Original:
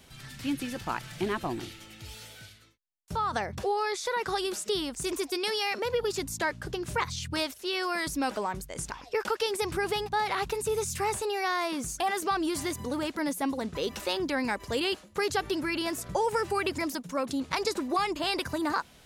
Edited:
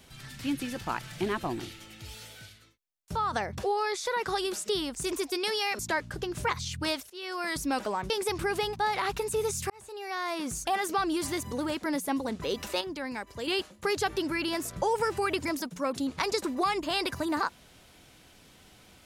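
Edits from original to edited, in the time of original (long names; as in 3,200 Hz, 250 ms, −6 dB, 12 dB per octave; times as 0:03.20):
0:05.79–0:06.30: remove
0:07.61–0:08.07: fade in, from −16 dB
0:08.61–0:09.43: remove
0:11.03–0:11.85: fade in
0:14.14–0:14.80: clip gain −6.5 dB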